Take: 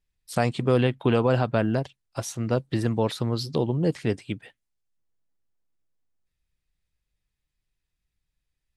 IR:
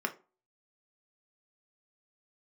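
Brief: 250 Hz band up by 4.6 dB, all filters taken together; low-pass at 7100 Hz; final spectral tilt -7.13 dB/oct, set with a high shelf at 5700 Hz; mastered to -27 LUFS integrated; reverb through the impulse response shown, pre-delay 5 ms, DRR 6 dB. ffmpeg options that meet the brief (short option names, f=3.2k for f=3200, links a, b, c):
-filter_complex "[0:a]lowpass=7.1k,equalizer=f=250:t=o:g=5.5,highshelf=f=5.7k:g=-6,asplit=2[a][b];[1:a]atrim=start_sample=2205,adelay=5[c];[b][c]afir=irnorm=-1:irlink=0,volume=-11.5dB[d];[a][d]amix=inputs=2:normalize=0,volume=-6dB"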